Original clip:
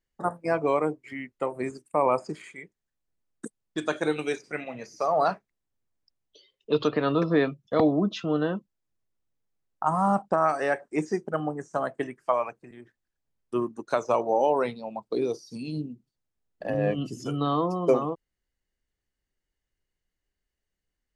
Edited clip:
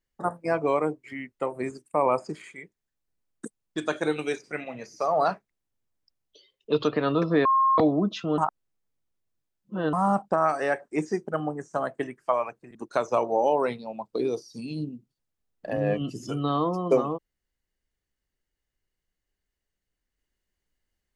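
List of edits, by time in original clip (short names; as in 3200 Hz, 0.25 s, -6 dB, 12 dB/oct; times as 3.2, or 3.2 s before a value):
7.45–7.78 bleep 1070 Hz -17.5 dBFS
8.38–9.93 reverse
12.75–13.72 cut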